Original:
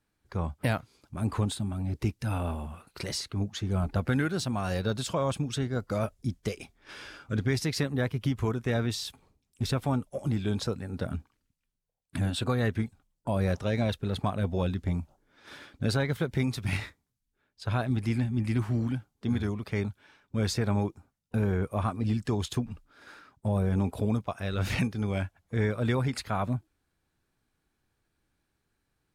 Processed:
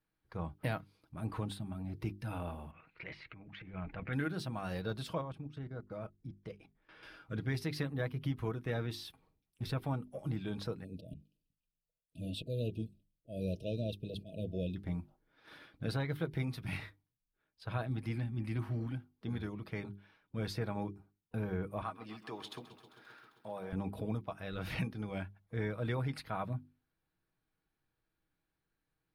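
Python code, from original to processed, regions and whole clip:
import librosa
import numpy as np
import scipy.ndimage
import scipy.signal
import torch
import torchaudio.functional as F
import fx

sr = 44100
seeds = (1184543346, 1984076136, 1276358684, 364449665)

y = fx.chain(x, sr, fx.level_steps(step_db=13),
    fx.transient(attack_db=-7, sustain_db=7),
    fx.lowpass_res(hz=2300.0, q=4.4), at=(2.71, 4.13))
y = fx.chain(y, sr, fx.lowpass(hz=2100.0, slope=6),
    fx.level_steps(step_db=17), at=(5.21, 7.03))
y = fx.chain(y, sr, fx.auto_swell(attack_ms=118.0),
    fx.brickwall_bandstop(low_hz=680.0, high_hz=2400.0), at=(10.84, 14.76))
y = fx.chain(y, sr, fx.weighting(curve='A'),
    fx.echo_crushed(ms=132, feedback_pct=80, bits=10, wet_db=-15.0), at=(21.82, 23.73))
y = fx.peak_eq(y, sr, hz=7100.0, db=-14.0, octaves=0.62)
y = fx.hum_notches(y, sr, base_hz=50, count=8)
y = y + 0.36 * np.pad(y, (int(6.3 * sr / 1000.0), 0))[:len(y)]
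y = y * 10.0 ** (-8.0 / 20.0)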